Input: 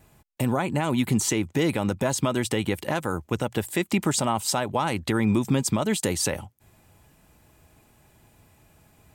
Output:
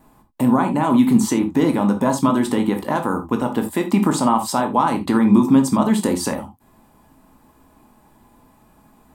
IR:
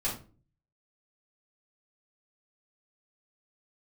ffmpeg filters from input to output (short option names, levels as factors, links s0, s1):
-filter_complex "[0:a]equalizer=f=100:t=o:w=0.67:g=-9,equalizer=f=250:t=o:w=0.67:g=12,equalizer=f=1000:t=o:w=0.67:g=11,equalizer=f=2500:t=o:w=0.67:g=-5,equalizer=f=6300:t=o:w=0.67:g=-4,asplit=2[s0][s1];[1:a]atrim=start_sample=2205,atrim=end_sample=3528,adelay=15[s2];[s1][s2]afir=irnorm=-1:irlink=0,volume=0.316[s3];[s0][s3]amix=inputs=2:normalize=0"